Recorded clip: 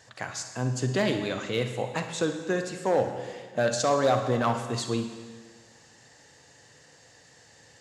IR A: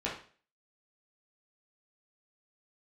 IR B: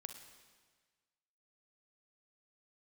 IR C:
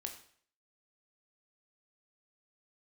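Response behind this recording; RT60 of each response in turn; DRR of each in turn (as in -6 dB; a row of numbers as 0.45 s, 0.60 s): B; 0.40 s, 1.5 s, 0.55 s; -7.0 dB, 6.0 dB, 3.5 dB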